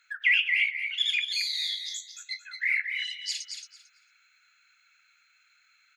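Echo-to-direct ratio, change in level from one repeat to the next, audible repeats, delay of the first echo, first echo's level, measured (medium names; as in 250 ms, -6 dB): -6.5 dB, -14.5 dB, 2, 224 ms, -6.5 dB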